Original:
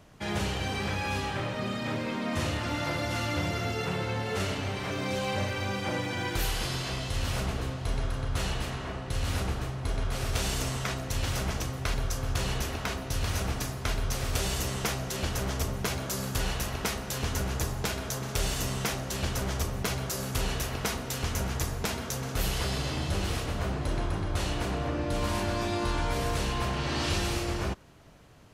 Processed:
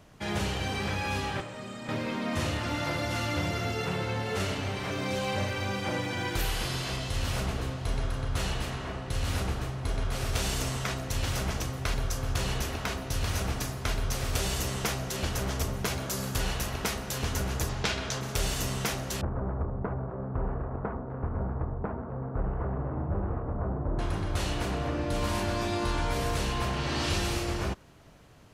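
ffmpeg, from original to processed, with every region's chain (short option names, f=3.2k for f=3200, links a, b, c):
-filter_complex "[0:a]asettb=1/sr,asplit=3[a][b][c];[a]atrim=end=1.404[d];[b]atrim=start=1.4:end=1.89,asetpts=PTS-STARTPTS,afade=t=in:d=0.004:c=qsin,afade=t=out:st=0.486:d=0.004:c=qsin,equalizer=f=7.8k:w=2.7:g=12,acrossover=split=200|1800[e][f][g];[e]acompressor=threshold=-48dB:ratio=4[h];[f]acompressor=threshold=-41dB:ratio=4[i];[g]acompressor=threshold=-50dB:ratio=4[j];[h][i][j]amix=inputs=3:normalize=0[k];[c]atrim=start=1.886[l];[d][k]acrossfade=d=0.004:c1=hsin:c2=qsin[m];[m][l]acrossfade=d=0.004:c1=qsin:c2=hsin,asettb=1/sr,asplit=3[n][o][p];[n]atrim=end=6.414[q];[o]atrim=start=6.41:end=6.97,asetpts=PTS-STARTPTS,afade=t=in:d=0.004:c=qsin,afade=t=out:st=0.556:d=0.004:c=qsin,acrossover=split=3800[r][s];[s]acompressor=threshold=-42dB:ratio=4:attack=1:release=60[t];[r][t]amix=inputs=2:normalize=0,highshelf=f=5.8k:g=7[u];[p]atrim=start=6.966[v];[q][u]acrossfade=d=0.004:c1=hsin:c2=qsin[w];[w][v]acrossfade=d=0.004:c1=qsin:c2=hsin,asettb=1/sr,asplit=3[x][y][z];[x]atrim=end=17.694[aa];[y]atrim=start=17.69:end=18.21,asetpts=PTS-STARTPTS,afade=t=in:d=0.004:c=qsin,afade=t=out:st=0.516:d=0.004:c=qsin,lowpass=4.2k,highshelf=f=2.1k:g=9.5[ab];[z]atrim=start=18.206[ac];[aa][ab]acrossfade=d=0.004:c1=hsin:c2=qsin[ad];[ad][ac]acrossfade=d=0.004:c1=qsin:c2=hsin,asettb=1/sr,asplit=3[ae][af][ag];[ae]atrim=end=19.214[ah];[af]atrim=start=19.21:end=23.99,asetpts=PTS-STARTPTS,afade=t=in:d=0.004:c=qsin,afade=t=out:st=4.776:d=0.004:c=qsin,adynamicsmooth=sensitivity=5:basefreq=610,lowpass=f=1.3k:w=0.5412,lowpass=f=1.3k:w=1.3066[ai];[ag]atrim=start=23.986[aj];[ah][ai]acrossfade=d=0.004:c1=hsin:c2=qsin[ak];[ak][aj]acrossfade=d=0.004:c1=qsin:c2=hsin"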